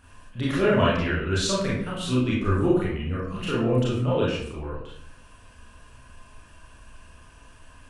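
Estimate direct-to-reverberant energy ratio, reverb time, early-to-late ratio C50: −7.5 dB, 0.65 s, 1.0 dB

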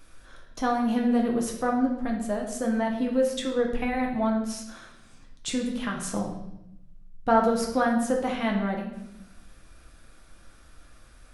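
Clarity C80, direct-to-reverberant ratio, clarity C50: 8.5 dB, −0.5 dB, 5.5 dB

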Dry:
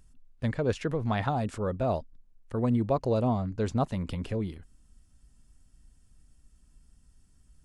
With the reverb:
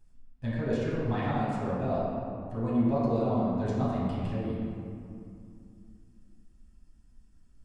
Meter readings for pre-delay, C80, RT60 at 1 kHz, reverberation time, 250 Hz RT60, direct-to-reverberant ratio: 7 ms, −1.0 dB, 2.5 s, 2.5 s, 3.5 s, −10.0 dB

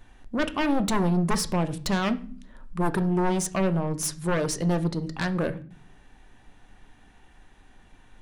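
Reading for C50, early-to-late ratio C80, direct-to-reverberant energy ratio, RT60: 17.0 dB, 21.5 dB, 10.0 dB, non-exponential decay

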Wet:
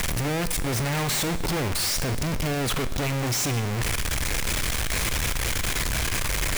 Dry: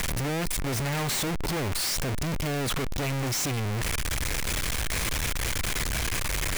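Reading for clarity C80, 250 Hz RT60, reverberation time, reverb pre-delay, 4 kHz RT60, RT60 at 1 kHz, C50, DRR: 14.5 dB, 1.3 s, 1.3 s, 6 ms, 1.3 s, 1.3 s, 13.0 dB, 11.5 dB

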